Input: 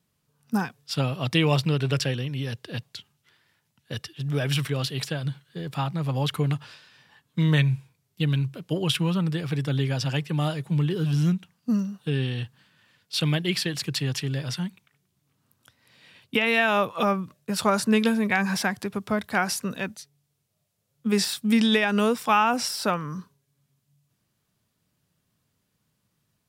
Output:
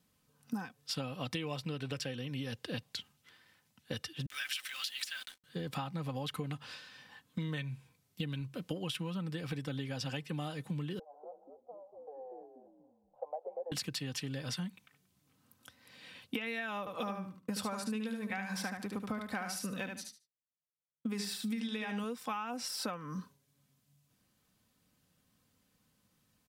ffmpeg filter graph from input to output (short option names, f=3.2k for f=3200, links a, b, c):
-filter_complex "[0:a]asettb=1/sr,asplit=3[a][b][c];[a]atrim=end=4.264[d];[b]atrim=start=4.26:end=5.44,asetpts=PTS-STARTPTS,afade=t=in:d=0.004:c=qsin,afade=t=out:st=1.176:d=0.004:c=qsin,highpass=f=1.5k:w=0.5412,highpass=f=1.5k:w=1.3066,acrusher=bits=7:mix=0:aa=0.5[e];[c]atrim=start=5.436[f];[d][e]acrossfade=d=0.004:c1=hsin:c2=qsin[g];[g][f]acrossfade=d=0.004:c1=qsin:c2=hsin,asettb=1/sr,asplit=3[h][i][j];[h]atrim=end=10.994[k];[i]atrim=start=10.99:end=13.72,asetpts=PTS-STARTPTS,afade=t=in:d=0.004:c=qsin,afade=t=out:st=2.726:d=0.004:c=qsin,asuperpass=centerf=680:order=8:qfactor=1.9,asplit=5[l][m][n][o][p];[m]adelay=239,afreqshift=-97,volume=-4.5dB[q];[n]adelay=478,afreqshift=-194,volume=-14.7dB[r];[o]adelay=717,afreqshift=-291,volume=-24.8dB[s];[p]adelay=956,afreqshift=-388,volume=-35dB[t];[l][q][r][s][t]amix=inputs=5:normalize=0,atrim=end_sample=120393[u];[j]atrim=start=13.716[v];[k][u]acrossfade=d=0.004:c1=hsin:c2=qsin[w];[w][v]acrossfade=d=0.004:c1=qsin:c2=hsin,asettb=1/sr,asplit=3[x][y][z];[x]atrim=end=16.794[aa];[y]atrim=start=16.79:end=22.04,asetpts=PTS-STARTPTS,afade=t=in:d=0.004:c=qsin,afade=t=out:st=5.246:d=0.004:c=qsin,agate=range=-33dB:threshold=-44dB:ratio=3:release=100:detection=peak,aecho=1:1:74|148|222:0.501|0.0952|0.0181,atrim=end_sample=231525[ab];[z]atrim=start=22.036[ac];[aa][ab]acrossfade=d=0.004:c1=hsin:c2=qsin[ad];[ad][ac]acrossfade=d=0.004:c1=qsin:c2=hsin,aecho=1:1:3.9:0.42,acompressor=threshold=-35dB:ratio=10"